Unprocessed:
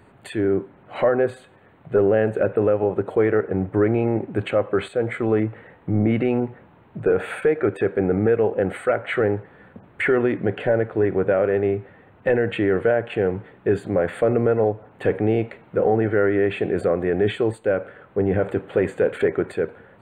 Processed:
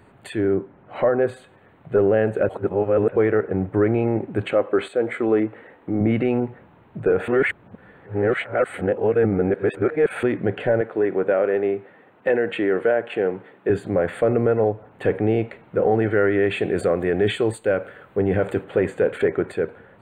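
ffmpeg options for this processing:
-filter_complex "[0:a]asettb=1/sr,asplit=3[a][b][c];[a]atrim=end=0.554[d];[b]atrim=start=0.55:end=1.22,asetpts=PTS-STARTPTS,afade=t=in:d=0.004:c=qsin,afade=t=out:st=0.666:d=0.004:c=qsin,highshelf=f=3.3k:g=-11[e];[c]atrim=start=1.216[f];[d][e]acrossfade=d=0.004:c1=hsin:c2=qsin[g];[g][f]acrossfade=d=0.004:c1=qsin:c2=hsin,asettb=1/sr,asplit=3[h][i][j];[h]atrim=end=4.534[k];[i]atrim=start=4.53:end=6.01,asetpts=PTS-STARTPTS,afade=t=in:d=0.004:c=qsin,afade=t=out:st=1.476:d=0.004:c=qsin,lowshelf=f=200:t=q:w=1.5:g=-8[l];[j]atrim=start=6.006[m];[k][l]acrossfade=d=0.004:c1=hsin:c2=qsin[n];[n][m]acrossfade=d=0.004:c1=qsin:c2=hsin,asettb=1/sr,asplit=3[o][p][q];[o]atrim=end=10.814[r];[p]atrim=start=10.81:end=13.7,asetpts=PTS-STARTPTS,afade=t=in:d=0.004:c=qsin,afade=t=out:st=2.886:d=0.004:c=qsin,highpass=230[s];[q]atrim=start=13.696[t];[r][s]acrossfade=d=0.004:c1=hsin:c2=qsin[u];[u][t]acrossfade=d=0.004:c1=qsin:c2=hsin,asettb=1/sr,asplit=3[v][w][x];[v]atrim=end=15.914[y];[w]atrim=start=15.91:end=18.64,asetpts=PTS-STARTPTS,afade=t=in:d=0.004:c=qsin,afade=t=out:st=2.726:d=0.004:c=qsin,highshelf=f=3.4k:g=10[z];[x]atrim=start=18.636[aa];[y][z]acrossfade=d=0.004:c1=hsin:c2=qsin[ab];[ab][aa]acrossfade=d=0.004:c1=qsin:c2=hsin,asplit=5[ac][ad][ae][af][ag];[ac]atrim=end=2.492[ah];[ad]atrim=start=2.488:end=3.162,asetpts=PTS-STARTPTS,areverse[ai];[ae]atrim=start=3.158:end=7.282[aj];[af]atrim=start=7.278:end=10.232,asetpts=PTS-STARTPTS,areverse[ak];[ag]atrim=start=10.228[al];[ah][ai]acrossfade=d=0.004:c1=hsin:c2=hsin[am];[am][aj]acrossfade=d=0.004:c1=hsin:c2=hsin[an];[an][ak]acrossfade=d=0.004:c1=hsin:c2=hsin[ao];[ao][al]acrossfade=d=0.004:c1=hsin:c2=hsin"

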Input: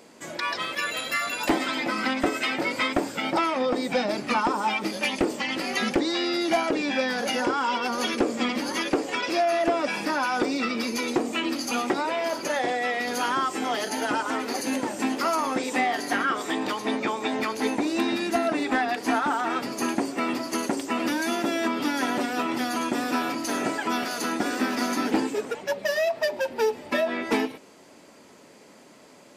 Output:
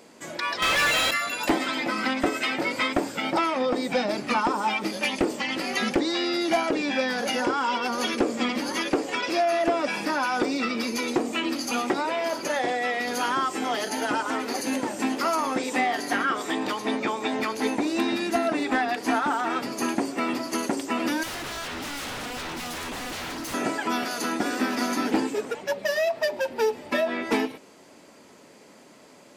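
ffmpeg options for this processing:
-filter_complex "[0:a]asettb=1/sr,asplit=3[a][b][c];[a]atrim=end=0.624[d];[b]atrim=start=0.62:end=1.11,asetpts=PTS-STARTPTS,afade=t=in:d=0.004:c=qsin,afade=t=out:st=0.486:d=0.004:c=qsin,asplit=2[e][f];[f]highpass=f=720:p=1,volume=32dB,asoftclip=type=tanh:threshold=-15dB[g];[e][g]amix=inputs=2:normalize=0,lowpass=f=4.1k:p=1,volume=-6dB[h];[c]atrim=start=1.106[i];[d][h]acrossfade=d=0.004:c1=hsin:c2=qsin[j];[j][i]acrossfade=d=0.004:c1=qsin:c2=hsin,asettb=1/sr,asplit=3[k][l][m];[k]atrim=end=21.234[n];[l]atrim=start=21.23:end=23.54,asetpts=PTS-STARTPTS,afade=t=in:d=0.004:c=qsin,afade=t=out:st=2.306:d=0.004:c=qsin,aeval=exprs='0.0355*(abs(mod(val(0)/0.0355+3,4)-2)-1)':c=same[o];[m]atrim=start=23.536[p];[n][o]acrossfade=d=0.004:c1=hsin:c2=qsin[q];[q][p]acrossfade=d=0.004:c1=qsin:c2=hsin"

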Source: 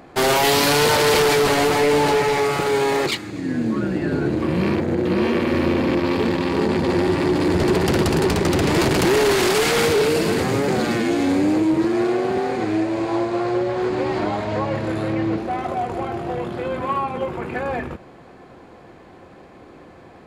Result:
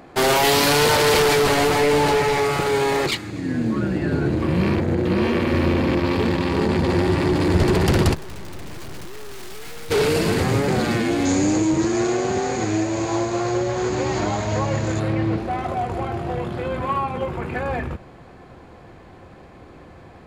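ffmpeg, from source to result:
-filter_complex "[0:a]asplit=3[a][b][c];[a]afade=t=out:st=8.13:d=0.02[d];[b]aeval=exprs='(tanh(70.8*val(0)+0.7)-tanh(0.7))/70.8':c=same,afade=t=in:st=8.13:d=0.02,afade=t=out:st=9.9:d=0.02[e];[c]afade=t=in:st=9.9:d=0.02[f];[d][e][f]amix=inputs=3:normalize=0,asettb=1/sr,asplit=3[g][h][i];[g]atrim=end=11.254[j];[h]atrim=start=11.25:end=15,asetpts=PTS-STARTPTS,afade=t=in:d=0.004:c=qsin,afade=t=out:st=3.746:d=0.004:c=qsin,lowpass=f=6.7k:t=q:w=9[k];[i]atrim=start=14.996[l];[j][k]acrossfade=d=0.004:c1=hsin:c2=qsin[m];[m][l]acrossfade=d=0.004:c1=qsin:c2=hsin,asubboost=boost=2:cutoff=160"

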